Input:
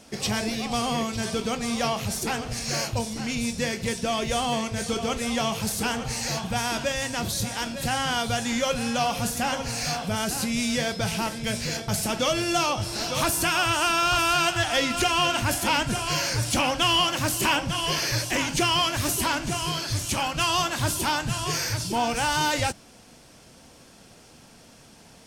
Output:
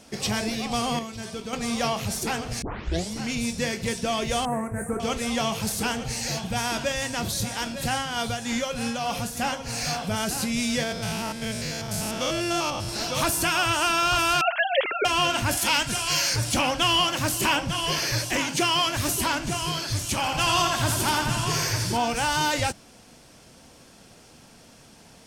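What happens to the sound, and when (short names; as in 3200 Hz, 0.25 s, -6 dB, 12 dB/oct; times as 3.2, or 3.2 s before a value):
0.99–1.53 gain -7 dB
2.62 tape start 0.49 s
4.45–5 Chebyshev band-stop 1800–8600 Hz, order 3
5.93–6.57 bell 1100 Hz -6 dB
7.94–9.77 tremolo 3.3 Hz, depth 49%
10.83–12.89 stepped spectrum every 0.1 s
14.41–15.05 sine-wave speech
15.57–16.36 tilt shelf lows -5 dB, about 1500 Hz
18.4–18.87 HPF 150 Hz
20.15–21.97 feedback echo 84 ms, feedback 57%, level -5 dB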